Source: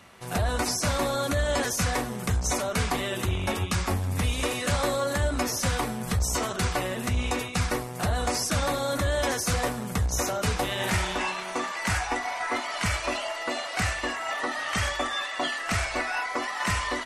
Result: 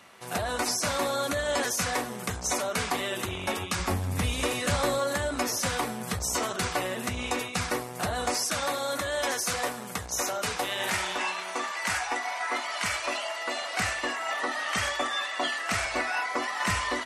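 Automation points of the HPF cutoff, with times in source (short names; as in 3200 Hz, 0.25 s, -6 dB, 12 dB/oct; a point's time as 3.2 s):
HPF 6 dB/oct
310 Hz
from 3.79 s 75 Hz
from 4.99 s 240 Hz
from 8.34 s 550 Hz
from 13.62 s 250 Hz
from 15.84 s 97 Hz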